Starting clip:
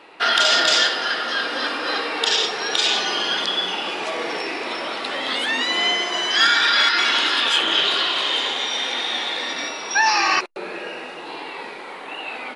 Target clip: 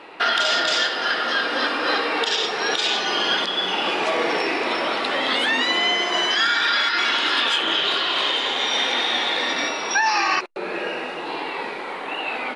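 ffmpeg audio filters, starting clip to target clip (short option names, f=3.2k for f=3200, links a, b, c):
-af "highshelf=f=5k:g=-7.5,alimiter=limit=-15.5dB:level=0:latency=1:release=417,volume=5dB"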